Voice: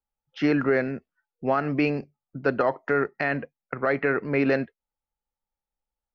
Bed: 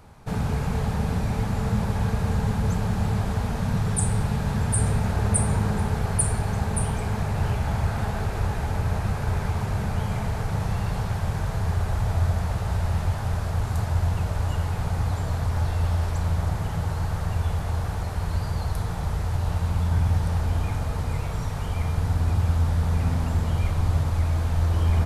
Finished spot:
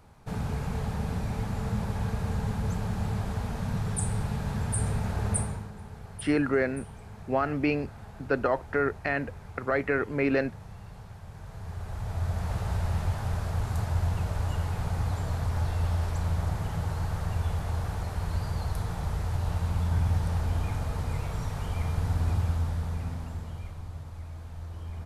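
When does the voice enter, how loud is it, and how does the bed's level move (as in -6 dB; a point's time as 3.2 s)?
5.85 s, -3.0 dB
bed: 5.38 s -6 dB
5.71 s -18.5 dB
11.27 s -18.5 dB
12.55 s -4 dB
22.32 s -4 dB
23.9 s -17.5 dB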